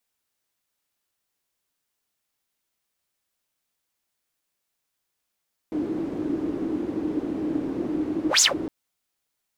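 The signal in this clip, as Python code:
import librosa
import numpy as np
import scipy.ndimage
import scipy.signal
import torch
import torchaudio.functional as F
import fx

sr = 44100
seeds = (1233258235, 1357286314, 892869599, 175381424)

y = fx.whoosh(sr, seeds[0], length_s=2.96, peak_s=2.69, rise_s=0.13, fall_s=0.15, ends_hz=310.0, peak_hz=6900.0, q=9.1, swell_db=11)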